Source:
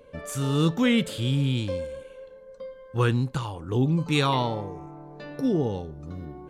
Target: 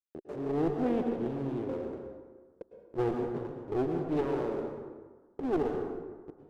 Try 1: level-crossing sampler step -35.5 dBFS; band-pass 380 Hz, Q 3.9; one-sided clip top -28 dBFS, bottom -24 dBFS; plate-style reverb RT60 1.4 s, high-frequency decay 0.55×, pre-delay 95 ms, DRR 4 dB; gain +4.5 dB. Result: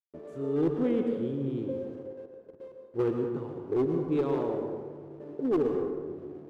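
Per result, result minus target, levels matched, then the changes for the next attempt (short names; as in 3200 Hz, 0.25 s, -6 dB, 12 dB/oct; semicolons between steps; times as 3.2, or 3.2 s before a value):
level-crossing sampler: distortion -10 dB; one-sided clip: distortion -8 dB
change: level-crossing sampler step -26 dBFS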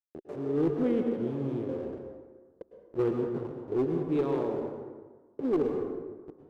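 one-sided clip: distortion -9 dB
change: one-sided clip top -38 dBFS, bottom -24 dBFS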